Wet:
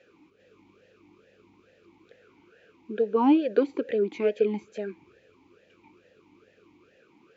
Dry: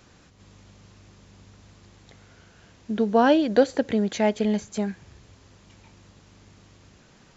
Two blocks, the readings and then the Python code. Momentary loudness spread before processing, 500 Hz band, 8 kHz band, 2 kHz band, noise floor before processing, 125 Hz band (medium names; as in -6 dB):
12 LU, -2.5 dB, no reading, -9.5 dB, -55 dBFS, under -10 dB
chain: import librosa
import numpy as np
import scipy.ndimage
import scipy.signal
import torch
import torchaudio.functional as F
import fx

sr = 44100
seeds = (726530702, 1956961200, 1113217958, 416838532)

y = fx.vowel_sweep(x, sr, vowels='e-u', hz=2.3)
y = y * 10.0 ** (8.5 / 20.0)